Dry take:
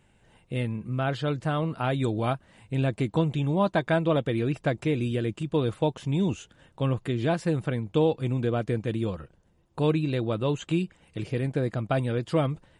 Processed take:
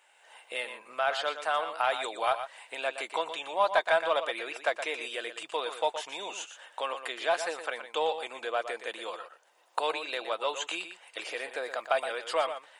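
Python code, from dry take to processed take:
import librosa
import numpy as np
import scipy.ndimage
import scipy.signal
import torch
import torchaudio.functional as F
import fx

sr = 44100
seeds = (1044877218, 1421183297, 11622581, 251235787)

p1 = fx.recorder_agc(x, sr, target_db=-19.0, rise_db_per_s=15.0, max_gain_db=30)
p2 = scipy.signal.sosfilt(scipy.signal.butter(4, 650.0, 'highpass', fs=sr, output='sos'), p1)
p3 = 10.0 ** (-27.0 / 20.0) * np.tanh(p2 / 10.0 ** (-27.0 / 20.0))
p4 = p2 + (p3 * librosa.db_to_amplitude(-9.0))
p5 = p4 + 10.0 ** (-10.0 / 20.0) * np.pad(p4, (int(119 * sr / 1000.0), 0))[:len(p4)]
p6 = fx.dmg_crackle(p5, sr, seeds[0], per_s=110.0, level_db=-51.0, at=(11.52, 12.15), fade=0.02)
y = p6 * librosa.db_to_amplitude(1.5)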